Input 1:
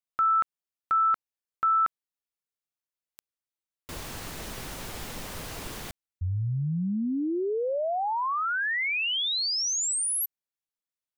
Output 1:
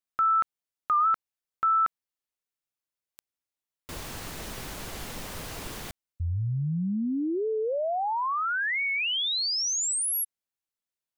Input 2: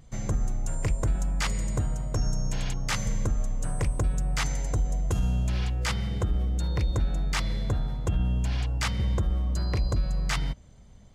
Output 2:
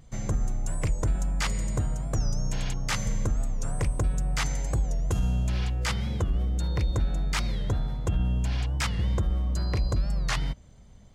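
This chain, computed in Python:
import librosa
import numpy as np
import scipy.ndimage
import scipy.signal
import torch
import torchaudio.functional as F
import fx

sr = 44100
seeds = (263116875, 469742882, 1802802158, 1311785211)

y = fx.record_warp(x, sr, rpm=45.0, depth_cents=160.0)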